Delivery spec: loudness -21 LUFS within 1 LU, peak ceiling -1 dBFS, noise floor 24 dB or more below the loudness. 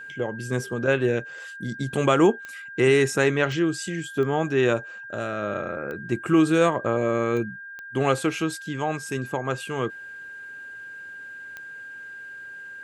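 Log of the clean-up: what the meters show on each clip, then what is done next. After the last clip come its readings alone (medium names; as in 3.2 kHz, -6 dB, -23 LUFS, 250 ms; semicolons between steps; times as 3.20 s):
clicks found 7; steady tone 1.6 kHz; tone level -37 dBFS; loudness -24.5 LUFS; peak level -6.5 dBFS; loudness target -21.0 LUFS
-> de-click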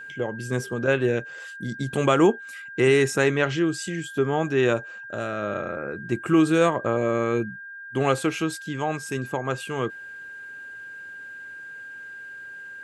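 clicks found 0; steady tone 1.6 kHz; tone level -37 dBFS
-> band-stop 1.6 kHz, Q 30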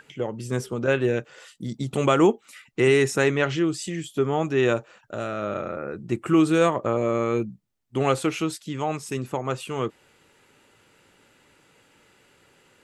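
steady tone not found; loudness -24.5 LUFS; peak level -6.5 dBFS; loudness target -21.0 LUFS
-> trim +3.5 dB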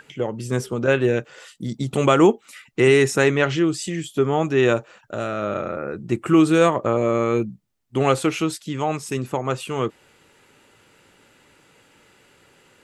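loudness -21.0 LUFS; peak level -3.0 dBFS; noise floor -57 dBFS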